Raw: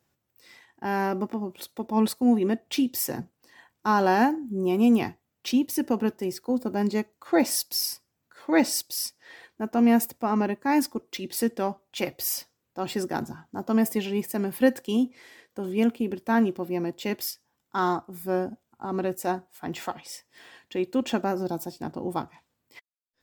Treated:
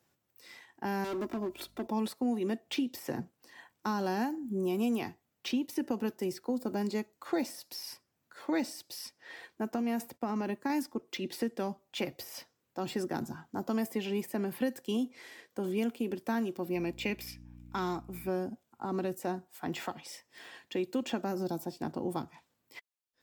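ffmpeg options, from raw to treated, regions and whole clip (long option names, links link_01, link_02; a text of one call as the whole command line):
ffmpeg -i in.wav -filter_complex "[0:a]asettb=1/sr,asplit=3[link_01][link_02][link_03];[link_01]atrim=end=1.044[link_04];[link_02]atrim=start=1.04:end=1.87,asetpts=PTS-STARTPTS,afade=type=in:duration=0.004:curve=qsin,afade=type=out:start_time=0.826:duration=0.004:curve=qsin,aecho=1:1:3:0.69,atrim=end_sample=36603,asoftclip=type=hard:threshold=-28.5dB,aeval=exprs='val(0)+0.00112*(sin(2*PI*50*n/s)+sin(2*PI*2*50*n/s)/2+sin(2*PI*3*50*n/s)/3+sin(2*PI*4*50*n/s)/4+sin(2*PI*5*50*n/s)/5)':channel_layout=same[link_05];[link_03]atrim=start=1.866[link_06];[link_04][link_05]acrossfade=duration=0.004:curve1=hsin:curve2=qsin[link_07];[link_07][link_06]acrossfade=duration=0.004:curve1=qsin:curve2=hsin,asettb=1/sr,asplit=3[link_08][link_09][link_10];[link_08]atrim=end=9.744[link_11];[link_09]atrim=start=9.74:end=10.7,asetpts=PTS-STARTPTS,afade=type=in:duration=0.004:curve=qsin,afade=type=out:start_time=0.956:duration=0.004:curve=qsin,agate=range=-33dB:threshold=-51dB:ratio=3:release=100:detection=peak,acompressor=threshold=-21dB:ratio=6:attack=3.2:release=140:knee=1:detection=peak[link_12];[link_10]atrim=start=10.696[link_13];[link_11][link_12]acrossfade=duration=0.004:curve1=hsin:curve2=qsin[link_14];[link_14][link_13]acrossfade=duration=0.004:curve1=qsin:curve2=hsin,asettb=1/sr,asplit=3[link_15][link_16][link_17];[link_15]atrim=end=16.754[link_18];[link_16]atrim=start=16.75:end=18.29,asetpts=PTS-STARTPTS,afade=type=in:duration=0.004:curve=qsin,afade=type=out:start_time=1.536:duration=0.004:curve=qsin,equalizer=frequency=2400:width_type=o:width=0.31:gain=14.5,aeval=exprs='val(0)+0.00562*(sin(2*PI*60*n/s)+sin(2*PI*2*60*n/s)/2+sin(2*PI*3*60*n/s)/3+sin(2*PI*4*60*n/s)/4+sin(2*PI*5*60*n/s)/5)':channel_layout=same[link_19];[link_17]atrim=start=18.286[link_20];[link_18][link_19]acrossfade=duration=0.004:curve1=hsin:curve2=qsin[link_21];[link_21][link_20]acrossfade=duration=0.004:curve1=qsin:curve2=hsin,deesser=0.45,lowshelf=frequency=76:gain=-11,acrossover=split=320|3700[link_22][link_23][link_24];[link_22]acompressor=threshold=-34dB:ratio=4[link_25];[link_23]acompressor=threshold=-36dB:ratio=4[link_26];[link_24]acompressor=threshold=-48dB:ratio=4[link_27];[link_25][link_26][link_27]amix=inputs=3:normalize=0" out.wav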